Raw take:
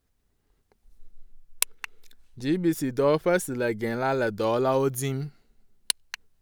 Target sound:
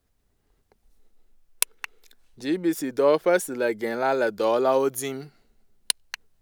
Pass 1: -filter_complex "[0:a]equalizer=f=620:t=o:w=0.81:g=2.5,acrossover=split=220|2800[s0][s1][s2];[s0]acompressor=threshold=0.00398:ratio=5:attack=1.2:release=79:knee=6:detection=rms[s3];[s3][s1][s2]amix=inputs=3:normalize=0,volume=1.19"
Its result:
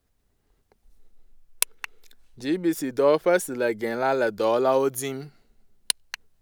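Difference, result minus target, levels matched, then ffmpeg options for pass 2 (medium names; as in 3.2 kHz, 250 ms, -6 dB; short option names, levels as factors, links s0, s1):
compression: peak gain reduction -6.5 dB
-filter_complex "[0:a]equalizer=f=620:t=o:w=0.81:g=2.5,acrossover=split=220|2800[s0][s1][s2];[s0]acompressor=threshold=0.00158:ratio=5:attack=1.2:release=79:knee=6:detection=rms[s3];[s3][s1][s2]amix=inputs=3:normalize=0,volume=1.19"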